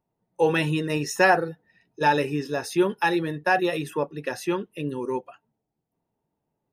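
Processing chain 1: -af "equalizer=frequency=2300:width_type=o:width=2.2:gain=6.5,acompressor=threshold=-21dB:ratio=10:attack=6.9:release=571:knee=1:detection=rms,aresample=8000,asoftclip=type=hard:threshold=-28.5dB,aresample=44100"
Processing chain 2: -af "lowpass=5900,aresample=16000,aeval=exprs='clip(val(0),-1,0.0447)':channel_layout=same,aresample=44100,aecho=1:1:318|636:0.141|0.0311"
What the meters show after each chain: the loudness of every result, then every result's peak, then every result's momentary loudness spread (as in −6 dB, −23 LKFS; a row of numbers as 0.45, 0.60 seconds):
−33.5, −27.5 LKFS; −24.0, −8.5 dBFS; 5, 10 LU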